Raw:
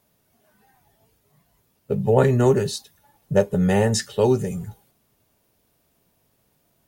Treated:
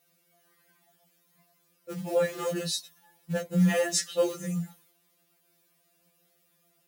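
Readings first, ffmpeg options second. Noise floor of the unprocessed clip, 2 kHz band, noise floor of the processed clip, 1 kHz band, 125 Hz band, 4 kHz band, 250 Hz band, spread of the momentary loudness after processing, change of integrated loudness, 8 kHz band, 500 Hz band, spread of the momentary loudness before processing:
−67 dBFS, −3.5 dB, −70 dBFS, −11.0 dB, −10.0 dB, −1.5 dB, −6.5 dB, 12 LU, −8.0 dB, −0.5 dB, −9.0 dB, 13 LU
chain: -af "equalizer=frequency=880:width_type=o:width=0.28:gain=-10.5,alimiter=limit=-11dB:level=0:latency=1:release=210,acrusher=bits=7:mode=log:mix=0:aa=0.000001,highpass=frequency=120:width=0.5412,highpass=frequency=120:width=1.3066,lowshelf=frequency=300:gain=-9.5,afftfilt=real='re*2.83*eq(mod(b,8),0)':imag='im*2.83*eq(mod(b,8),0)':win_size=2048:overlap=0.75,volume=2dB"

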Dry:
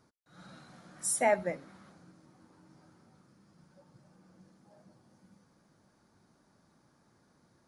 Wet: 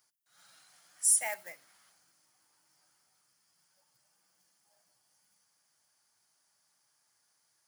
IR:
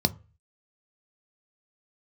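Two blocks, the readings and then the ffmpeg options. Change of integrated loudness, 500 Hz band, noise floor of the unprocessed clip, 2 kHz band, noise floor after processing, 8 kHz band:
+3.0 dB, −15.5 dB, −69 dBFS, −4.0 dB, −75 dBFS, +7.0 dB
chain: -filter_complex "[0:a]acrusher=bits=7:mode=log:mix=0:aa=0.000001,aderivative,asplit=2[link_01][link_02];[1:a]atrim=start_sample=2205,asetrate=33957,aresample=44100[link_03];[link_02][link_03]afir=irnorm=-1:irlink=0,volume=-23dB[link_04];[link_01][link_04]amix=inputs=2:normalize=0,volume=6dB"

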